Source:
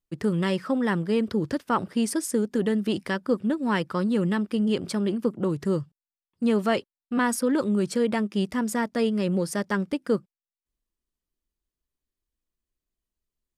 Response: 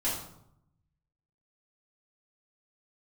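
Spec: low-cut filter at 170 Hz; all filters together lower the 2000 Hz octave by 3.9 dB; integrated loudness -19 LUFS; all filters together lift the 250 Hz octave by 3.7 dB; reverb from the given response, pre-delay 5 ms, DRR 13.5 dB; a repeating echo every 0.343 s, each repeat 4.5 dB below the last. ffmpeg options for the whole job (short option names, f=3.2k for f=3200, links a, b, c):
-filter_complex "[0:a]highpass=170,equalizer=f=250:t=o:g=6,equalizer=f=2k:t=o:g=-5,aecho=1:1:343|686|1029|1372|1715|2058|2401|2744|3087:0.596|0.357|0.214|0.129|0.0772|0.0463|0.0278|0.0167|0.01,asplit=2[a][b];[1:a]atrim=start_sample=2205,adelay=5[c];[b][c]afir=irnorm=-1:irlink=0,volume=-20.5dB[d];[a][d]amix=inputs=2:normalize=0,volume=2.5dB"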